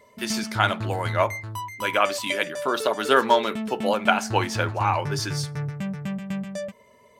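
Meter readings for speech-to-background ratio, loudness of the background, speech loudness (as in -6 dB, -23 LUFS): 7.5 dB, -32.0 LUFS, -24.5 LUFS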